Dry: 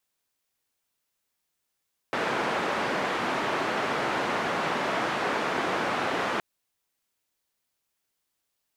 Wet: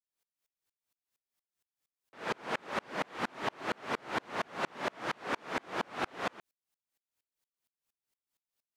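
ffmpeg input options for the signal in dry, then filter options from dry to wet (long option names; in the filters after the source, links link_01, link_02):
-f lavfi -i "anoisesrc=color=white:duration=4.27:sample_rate=44100:seed=1,highpass=frequency=200,lowpass=frequency=1400,volume=-11dB"
-af "aeval=exprs='val(0)*pow(10,-37*if(lt(mod(-4.3*n/s,1),2*abs(-4.3)/1000),1-mod(-4.3*n/s,1)/(2*abs(-4.3)/1000),(mod(-4.3*n/s,1)-2*abs(-4.3)/1000)/(1-2*abs(-4.3)/1000))/20)':channel_layout=same"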